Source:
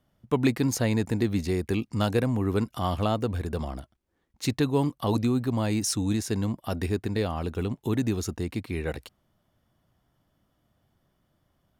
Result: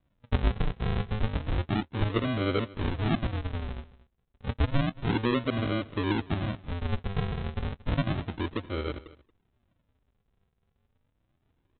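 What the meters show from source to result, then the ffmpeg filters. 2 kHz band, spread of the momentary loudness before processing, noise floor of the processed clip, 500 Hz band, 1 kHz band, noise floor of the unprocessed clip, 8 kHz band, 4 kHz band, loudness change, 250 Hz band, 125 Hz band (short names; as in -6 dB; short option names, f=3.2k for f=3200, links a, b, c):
+1.0 dB, 7 LU, -75 dBFS, -5.0 dB, -2.0 dB, -73 dBFS, under -40 dB, -1.5 dB, -3.0 dB, -5.0 dB, -1.5 dB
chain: -af "aecho=1:1:2.9:0.67,aresample=8000,acrusher=samples=18:mix=1:aa=0.000001:lfo=1:lforange=18:lforate=0.31,aresample=44100,aecho=1:1:229:0.1,volume=-3dB"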